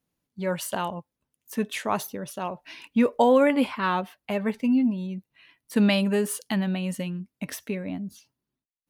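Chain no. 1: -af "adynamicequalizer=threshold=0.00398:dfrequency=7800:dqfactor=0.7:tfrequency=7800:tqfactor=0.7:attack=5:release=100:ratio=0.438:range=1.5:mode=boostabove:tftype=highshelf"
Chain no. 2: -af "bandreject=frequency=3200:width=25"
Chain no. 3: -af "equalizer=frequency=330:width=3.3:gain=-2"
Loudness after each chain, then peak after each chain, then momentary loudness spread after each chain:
−26.0, −26.0, −26.5 LKFS; −8.0, −8.5, −8.5 dBFS; 15, 15, 15 LU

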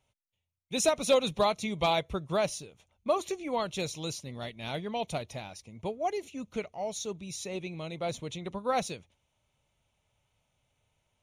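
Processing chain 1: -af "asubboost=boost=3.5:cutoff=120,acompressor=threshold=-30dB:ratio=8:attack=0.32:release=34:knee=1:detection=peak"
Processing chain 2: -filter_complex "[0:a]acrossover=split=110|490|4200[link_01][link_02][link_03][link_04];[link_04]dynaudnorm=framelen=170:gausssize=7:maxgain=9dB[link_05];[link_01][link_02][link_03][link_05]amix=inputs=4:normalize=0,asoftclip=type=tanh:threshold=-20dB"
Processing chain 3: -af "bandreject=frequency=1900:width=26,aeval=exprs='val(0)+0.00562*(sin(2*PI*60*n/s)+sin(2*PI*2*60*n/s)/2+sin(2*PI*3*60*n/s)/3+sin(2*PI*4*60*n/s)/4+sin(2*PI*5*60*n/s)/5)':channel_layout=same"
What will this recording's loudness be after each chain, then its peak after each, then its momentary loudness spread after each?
−38.0, −32.0, −32.5 LKFS; −25.5, −20.0, −15.0 dBFS; 6, 12, 21 LU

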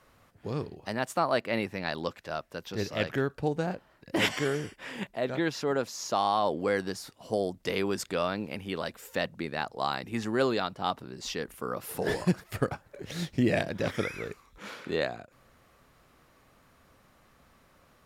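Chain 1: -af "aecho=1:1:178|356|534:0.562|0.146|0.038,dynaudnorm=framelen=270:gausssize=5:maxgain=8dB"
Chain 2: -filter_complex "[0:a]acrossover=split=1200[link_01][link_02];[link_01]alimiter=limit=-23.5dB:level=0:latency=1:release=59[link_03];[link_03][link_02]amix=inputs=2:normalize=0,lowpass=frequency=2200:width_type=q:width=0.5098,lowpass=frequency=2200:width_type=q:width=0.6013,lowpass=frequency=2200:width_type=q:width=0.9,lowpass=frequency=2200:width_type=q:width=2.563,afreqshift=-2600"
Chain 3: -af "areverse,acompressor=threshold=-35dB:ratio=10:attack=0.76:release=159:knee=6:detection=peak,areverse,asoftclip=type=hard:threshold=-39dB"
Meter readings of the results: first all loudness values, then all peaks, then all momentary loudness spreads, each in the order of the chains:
−23.0, −32.0, −45.0 LKFS; −3.5, −17.5, −39.0 dBFS; 10, 8, 19 LU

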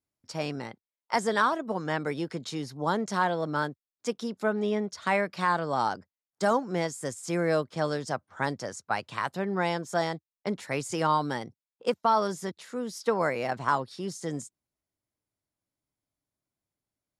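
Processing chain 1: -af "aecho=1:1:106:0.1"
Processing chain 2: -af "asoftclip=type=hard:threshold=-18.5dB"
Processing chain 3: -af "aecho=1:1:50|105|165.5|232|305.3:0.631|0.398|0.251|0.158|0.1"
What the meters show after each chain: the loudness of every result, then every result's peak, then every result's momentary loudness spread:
−30.0, −30.5, −27.5 LKFS; −12.0, −18.5, −9.0 dBFS; 10, 9, 10 LU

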